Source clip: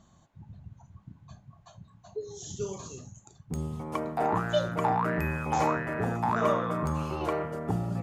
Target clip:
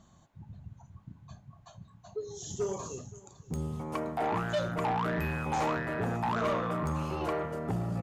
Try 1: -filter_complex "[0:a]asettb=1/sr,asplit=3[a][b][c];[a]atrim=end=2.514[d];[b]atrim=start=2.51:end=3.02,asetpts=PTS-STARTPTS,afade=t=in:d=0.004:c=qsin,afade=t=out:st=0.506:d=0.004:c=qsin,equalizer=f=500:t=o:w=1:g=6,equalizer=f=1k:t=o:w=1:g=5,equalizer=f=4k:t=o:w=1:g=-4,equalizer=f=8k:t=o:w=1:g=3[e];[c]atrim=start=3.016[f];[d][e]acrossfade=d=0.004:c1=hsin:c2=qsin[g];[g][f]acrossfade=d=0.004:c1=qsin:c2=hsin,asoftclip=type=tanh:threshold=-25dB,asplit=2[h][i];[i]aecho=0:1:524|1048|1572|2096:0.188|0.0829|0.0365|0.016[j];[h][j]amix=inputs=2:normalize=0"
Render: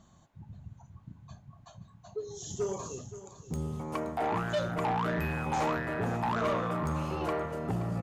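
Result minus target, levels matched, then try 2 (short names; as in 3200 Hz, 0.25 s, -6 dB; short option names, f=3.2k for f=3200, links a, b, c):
echo-to-direct +7.5 dB
-filter_complex "[0:a]asettb=1/sr,asplit=3[a][b][c];[a]atrim=end=2.514[d];[b]atrim=start=2.51:end=3.02,asetpts=PTS-STARTPTS,afade=t=in:d=0.004:c=qsin,afade=t=out:st=0.506:d=0.004:c=qsin,equalizer=f=500:t=o:w=1:g=6,equalizer=f=1k:t=o:w=1:g=5,equalizer=f=4k:t=o:w=1:g=-4,equalizer=f=8k:t=o:w=1:g=3[e];[c]atrim=start=3.016[f];[d][e]acrossfade=d=0.004:c1=hsin:c2=qsin[g];[g][f]acrossfade=d=0.004:c1=qsin:c2=hsin,asoftclip=type=tanh:threshold=-25dB,asplit=2[h][i];[i]aecho=0:1:524|1048|1572:0.0794|0.035|0.0154[j];[h][j]amix=inputs=2:normalize=0"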